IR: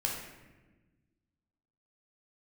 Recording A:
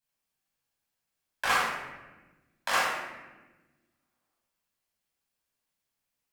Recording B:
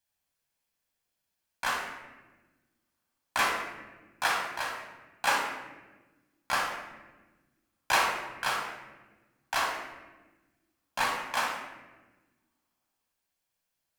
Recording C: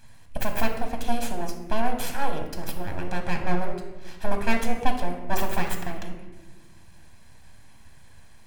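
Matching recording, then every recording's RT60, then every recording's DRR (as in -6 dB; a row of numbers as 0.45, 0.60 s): B; 1.2, 1.2, 1.3 s; -6.5, -1.5, 4.0 dB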